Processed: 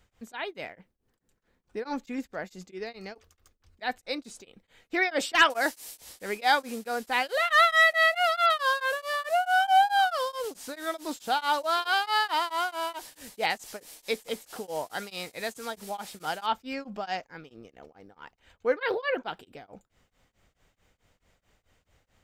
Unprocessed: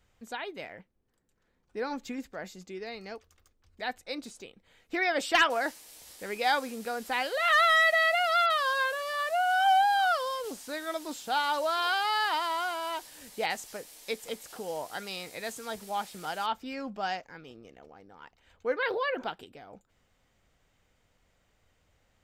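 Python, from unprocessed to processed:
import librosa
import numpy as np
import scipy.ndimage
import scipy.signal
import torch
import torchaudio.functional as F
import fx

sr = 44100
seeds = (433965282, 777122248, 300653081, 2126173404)

y = fx.high_shelf(x, sr, hz=4200.0, db=7.0, at=(5.45, 5.98))
y = y * np.abs(np.cos(np.pi * 4.6 * np.arange(len(y)) / sr))
y = F.gain(torch.from_numpy(y), 4.5).numpy()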